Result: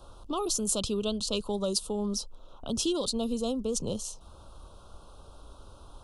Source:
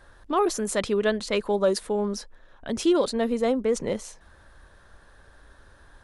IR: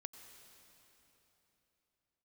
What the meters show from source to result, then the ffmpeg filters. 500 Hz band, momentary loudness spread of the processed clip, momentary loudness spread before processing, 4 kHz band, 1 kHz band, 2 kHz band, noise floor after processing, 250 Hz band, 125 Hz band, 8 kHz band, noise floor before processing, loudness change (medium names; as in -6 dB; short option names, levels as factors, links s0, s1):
-8.5 dB, 8 LU, 10 LU, +2.0 dB, -9.5 dB, -16.5 dB, -52 dBFS, -4.5 dB, -1.0 dB, +4.0 dB, -55 dBFS, -5.0 dB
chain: -filter_complex "[0:a]acrossover=split=170|3000[s0][s1][s2];[s1]acompressor=threshold=0.00501:ratio=2[s3];[s0][s3][s2]amix=inputs=3:normalize=0,asuperstop=centerf=1900:order=8:qfactor=1.4,volume=1.58"